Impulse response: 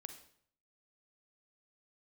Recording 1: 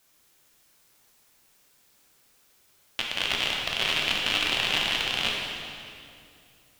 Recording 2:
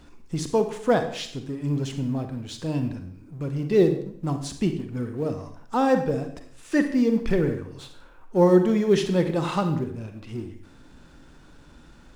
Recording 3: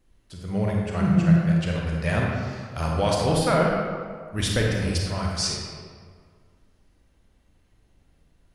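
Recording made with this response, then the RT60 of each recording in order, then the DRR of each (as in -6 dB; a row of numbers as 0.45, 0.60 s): 2; 2.5, 0.60, 1.9 s; -2.0, 7.0, -2.0 dB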